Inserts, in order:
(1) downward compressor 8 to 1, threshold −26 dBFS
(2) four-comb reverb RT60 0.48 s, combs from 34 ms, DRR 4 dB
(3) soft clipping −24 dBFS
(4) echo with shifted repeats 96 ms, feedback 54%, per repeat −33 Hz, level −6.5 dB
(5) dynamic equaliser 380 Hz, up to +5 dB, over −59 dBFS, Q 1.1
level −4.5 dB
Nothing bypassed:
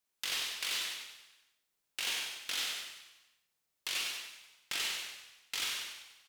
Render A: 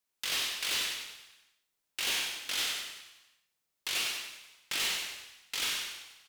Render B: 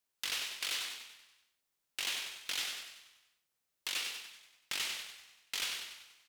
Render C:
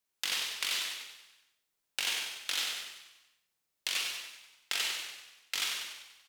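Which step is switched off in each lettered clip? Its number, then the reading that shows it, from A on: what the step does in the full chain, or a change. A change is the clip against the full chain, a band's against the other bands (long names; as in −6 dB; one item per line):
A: 1, average gain reduction 4.5 dB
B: 2, change in integrated loudness −1.5 LU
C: 3, distortion level −12 dB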